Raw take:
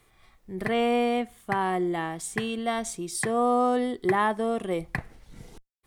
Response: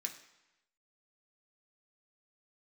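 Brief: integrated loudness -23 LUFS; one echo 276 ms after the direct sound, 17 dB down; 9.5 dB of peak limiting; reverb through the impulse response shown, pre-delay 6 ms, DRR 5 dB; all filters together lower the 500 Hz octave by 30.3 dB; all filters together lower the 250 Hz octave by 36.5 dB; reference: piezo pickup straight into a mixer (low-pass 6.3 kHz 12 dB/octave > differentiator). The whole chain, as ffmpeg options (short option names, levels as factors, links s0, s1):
-filter_complex "[0:a]equalizer=f=250:t=o:g=-7.5,equalizer=f=500:t=o:g=-7.5,alimiter=limit=0.0794:level=0:latency=1,aecho=1:1:276:0.141,asplit=2[s0][s1];[1:a]atrim=start_sample=2205,adelay=6[s2];[s1][s2]afir=irnorm=-1:irlink=0,volume=0.668[s3];[s0][s3]amix=inputs=2:normalize=0,lowpass=6300,aderivative,volume=10"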